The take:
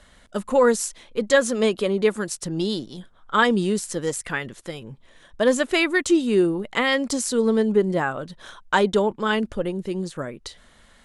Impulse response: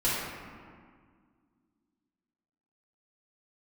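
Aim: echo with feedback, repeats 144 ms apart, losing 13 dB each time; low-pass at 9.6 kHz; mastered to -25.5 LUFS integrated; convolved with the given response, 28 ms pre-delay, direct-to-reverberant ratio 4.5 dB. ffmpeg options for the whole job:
-filter_complex "[0:a]lowpass=9600,aecho=1:1:144|288|432:0.224|0.0493|0.0108,asplit=2[s0][s1];[1:a]atrim=start_sample=2205,adelay=28[s2];[s1][s2]afir=irnorm=-1:irlink=0,volume=0.158[s3];[s0][s3]amix=inputs=2:normalize=0,volume=0.562"

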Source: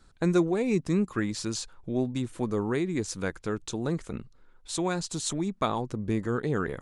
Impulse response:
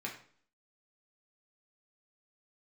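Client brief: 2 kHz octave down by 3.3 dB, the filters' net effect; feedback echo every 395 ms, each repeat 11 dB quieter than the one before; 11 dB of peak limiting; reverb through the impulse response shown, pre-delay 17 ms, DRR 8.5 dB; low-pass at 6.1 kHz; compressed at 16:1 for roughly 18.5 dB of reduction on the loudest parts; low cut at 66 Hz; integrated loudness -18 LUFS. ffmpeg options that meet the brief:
-filter_complex "[0:a]highpass=66,lowpass=6100,equalizer=f=2000:t=o:g=-4.5,acompressor=threshold=0.0141:ratio=16,alimiter=level_in=4.22:limit=0.0631:level=0:latency=1,volume=0.237,aecho=1:1:395|790|1185:0.282|0.0789|0.0221,asplit=2[s0][s1];[1:a]atrim=start_sample=2205,adelay=17[s2];[s1][s2]afir=irnorm=-1:irlink=0,volume=0.316[s3];[s0][s3]amix=inputs=2:normalize=0,volume=21.1"

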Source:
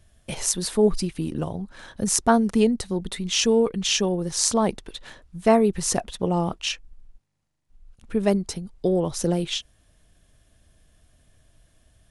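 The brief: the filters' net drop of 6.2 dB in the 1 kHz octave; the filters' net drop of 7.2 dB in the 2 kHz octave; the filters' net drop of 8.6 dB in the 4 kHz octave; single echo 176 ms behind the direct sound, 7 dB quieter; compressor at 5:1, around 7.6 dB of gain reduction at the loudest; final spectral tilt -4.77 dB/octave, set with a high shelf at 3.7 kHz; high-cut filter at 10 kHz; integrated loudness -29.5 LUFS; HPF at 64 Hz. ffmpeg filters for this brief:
-af "highpass=64,lowpass=10000,equalizer=f=1000:t=o:g=-8,equalizer=f=2000:t=o:g=-3.5,highshelf=f=3700:g=-4,equalizer=f=4000:t=o:g=-7.5,acompressor=threshold=0.0708:ratio=5,aecho=1:1:176:0.447,volume=0.944"

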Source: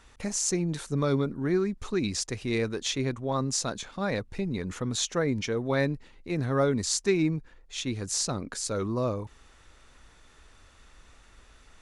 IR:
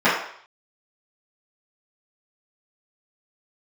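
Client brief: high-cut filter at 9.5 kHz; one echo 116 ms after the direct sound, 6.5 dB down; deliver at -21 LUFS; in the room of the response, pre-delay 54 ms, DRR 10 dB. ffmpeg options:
-filter_complex "[0:a]lowpass=9500,aecho=1:1:116:0.473,asplit=2[s0][s1];[1:a]atrim=start_sample=2205,adelay=54[s2];[s1][s2]afir=irnorm=-1:irlink=0,volume=0.0224[s3];[s0][s3]amix=inputs=2:normalize=0,volume=2.37"

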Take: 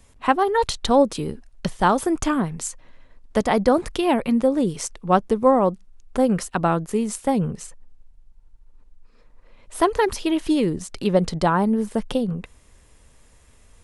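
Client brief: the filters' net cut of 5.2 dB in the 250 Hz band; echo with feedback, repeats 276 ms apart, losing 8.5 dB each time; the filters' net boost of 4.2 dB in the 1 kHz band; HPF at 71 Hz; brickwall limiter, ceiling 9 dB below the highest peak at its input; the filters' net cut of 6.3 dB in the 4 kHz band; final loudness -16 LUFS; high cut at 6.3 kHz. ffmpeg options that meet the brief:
-af "highpass=71,lowpass=6300,equalizer=f=250:t=o:g=-7,equalizer=f=1000:t=o:g=6,equalizer=f=4000:t=o:g=-8,alimiter=limit=0.316:level=0:latency=1,aecho=1:1:276|552|828|1104:0.376|0.143|0.0543|0.0206,volume=2.37"

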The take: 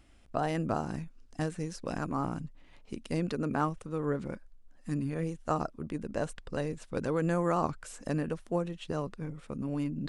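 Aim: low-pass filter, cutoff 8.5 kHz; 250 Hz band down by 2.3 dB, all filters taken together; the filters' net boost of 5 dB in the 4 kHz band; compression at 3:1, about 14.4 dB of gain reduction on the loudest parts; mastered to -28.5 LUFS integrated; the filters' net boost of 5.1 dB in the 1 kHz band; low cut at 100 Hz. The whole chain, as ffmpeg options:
-af "highpass=100,lowpass=8500,equalizer=f=250:t=o:g=-3.5,equalizer=f=1000:t=o:g=6.5,equalizer=f=4000:t=o:g=6.5,acompressor=threshold=0.00891:ratio=3,volume=5.62"

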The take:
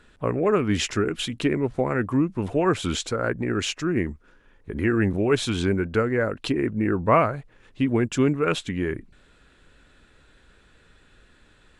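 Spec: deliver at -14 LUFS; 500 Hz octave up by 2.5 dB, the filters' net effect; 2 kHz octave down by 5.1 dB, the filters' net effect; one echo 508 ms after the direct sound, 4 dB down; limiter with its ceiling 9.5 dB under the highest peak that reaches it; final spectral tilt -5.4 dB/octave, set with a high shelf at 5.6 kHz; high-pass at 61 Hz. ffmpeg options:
-af "highpass=61,equalizer=f=500:t=o:g=3.5,equalizer=f=2000:t=o:g=-8,highshelf=f=5600:g=5.5,alimiter=limit=0.178:level=0:latency=1,aecho=1:1:508:0.631,volume=3.35"

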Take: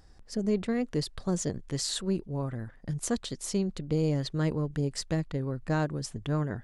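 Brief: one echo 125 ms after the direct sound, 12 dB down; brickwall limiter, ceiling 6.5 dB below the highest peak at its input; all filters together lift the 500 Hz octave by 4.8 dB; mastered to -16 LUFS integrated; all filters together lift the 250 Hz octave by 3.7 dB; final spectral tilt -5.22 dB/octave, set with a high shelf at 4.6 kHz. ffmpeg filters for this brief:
-af "equalizer=f=250:t=o:g=4,equalizer=f=500:t=o:g=4.5,highshelf=f=4600:g=6.5,alimiter=limit=0.126:level=0:latency=1,aecho=1:1:125:0.251,volume=4.47"

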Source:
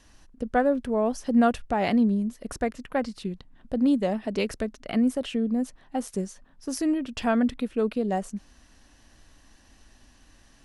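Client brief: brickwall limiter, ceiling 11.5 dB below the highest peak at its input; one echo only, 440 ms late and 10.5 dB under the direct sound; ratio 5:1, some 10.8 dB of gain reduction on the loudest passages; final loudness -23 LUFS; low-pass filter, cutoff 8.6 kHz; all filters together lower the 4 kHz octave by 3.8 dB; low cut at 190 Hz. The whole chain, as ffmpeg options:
-af "highpass=190,lowpass=8600,equalizer=f=4000:t=o:g=-5.5,acompressor=threshold=0.0282:ratio=5,alimiter=level_in=2.37:limit=0.0631:level=0:latency=1,volume=0.422,aecho=1:1:440:0.299,volume=7.5"

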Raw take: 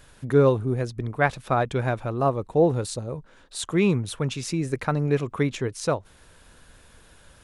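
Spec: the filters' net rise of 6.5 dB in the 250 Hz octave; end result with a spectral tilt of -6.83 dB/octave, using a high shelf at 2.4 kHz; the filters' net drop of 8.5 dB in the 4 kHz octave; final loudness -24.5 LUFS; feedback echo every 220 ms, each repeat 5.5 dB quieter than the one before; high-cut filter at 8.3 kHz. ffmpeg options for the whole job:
-af "lowpass=8300,equalizer=f=250:t=o:g=9,highshelf=f=2400:g=-6.5,equalizer=f=4000:t=o:g=-4.5,aecho=1:1:220|440|660|880|1100|1320|1540:0.531|0.281|0.149|0.079|0.0419|0.0222|0.0118,volume=0.631"

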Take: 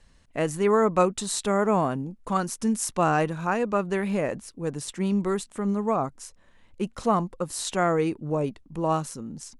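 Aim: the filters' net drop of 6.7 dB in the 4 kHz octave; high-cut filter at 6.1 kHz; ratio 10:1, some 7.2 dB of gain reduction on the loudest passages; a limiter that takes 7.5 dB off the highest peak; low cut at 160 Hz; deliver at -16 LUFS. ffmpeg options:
-af "highpass=160,lowpass=6100,equalizer=f=4000:t=o:g=-7.5,acompressor=threshold=0.0631:ratio=10,volume=7.08,alimiter=limit=0.562:level=0:latency=1"

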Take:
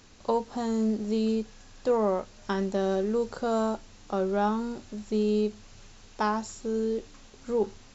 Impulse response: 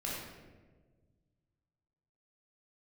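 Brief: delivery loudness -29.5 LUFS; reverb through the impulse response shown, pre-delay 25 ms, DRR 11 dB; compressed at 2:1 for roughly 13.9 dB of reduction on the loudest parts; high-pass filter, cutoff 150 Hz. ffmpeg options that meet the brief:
-filter_complex "[0:a]highpass=150,acompressor=threshold=0.00398:ratio=2,asplit=2[s0][s1];[1:a]atrim=start_sample=2205,adelay=25[s2];[s1][s2]afir=irnorm=-1:irlink=0,volume=0.2[s3];[s0][s3]amix=inputs=2:normalize=0,volume=4.22"

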